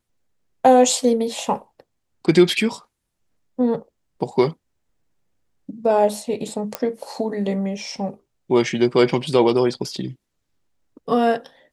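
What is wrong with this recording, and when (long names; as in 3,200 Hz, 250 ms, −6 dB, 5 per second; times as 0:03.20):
0:06.75: click −8 dBFS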